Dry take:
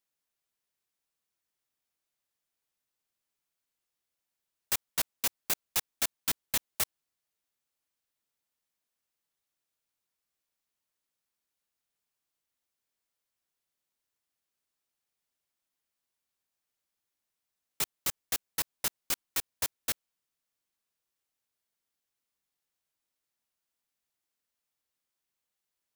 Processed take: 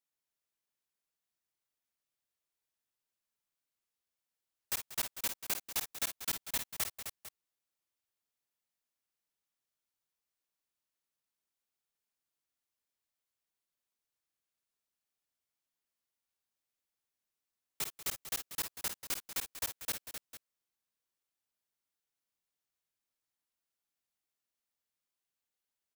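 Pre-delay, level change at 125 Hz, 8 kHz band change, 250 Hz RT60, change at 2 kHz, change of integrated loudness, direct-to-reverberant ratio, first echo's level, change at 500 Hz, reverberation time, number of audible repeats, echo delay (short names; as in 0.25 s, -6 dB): none, -4.5 dB, -4.5 dB, none, -4.5 dB, -5.0 dB, none, -8.0 dB, -4.5 dB, none, 4, 52 ms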